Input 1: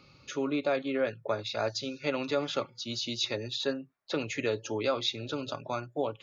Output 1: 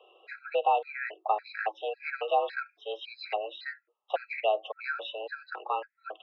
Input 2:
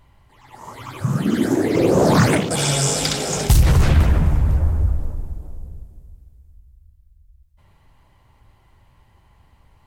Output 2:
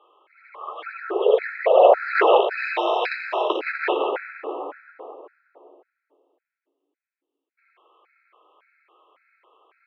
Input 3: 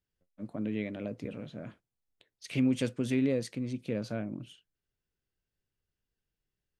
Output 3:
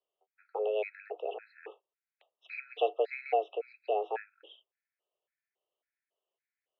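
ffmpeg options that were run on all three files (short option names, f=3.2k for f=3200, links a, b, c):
-af "highpass=f=210:t=q:w=0.5412,highpass=f=210:t=q:w=1.307,lowpass=f=2.9k:t=q:w=0.5176,lowpass=f=2.9k:t=q:w=0.7071,lowpass=f=2.9k:t=q:w=1.932,afreqshift=210,afftfilt=real='re*gt(sin(2*PI*1.8*pts/sr)*(1-2*mod(floor(b*sr/1024/1300),2)),0)':imag='im*gt(sin(2*PI*1.8*pts/sr)*(1-2*mod(floor(b*sr/1024/1300),2)),0)':win_size=1024:overlap=0.75,volume=4.5dB"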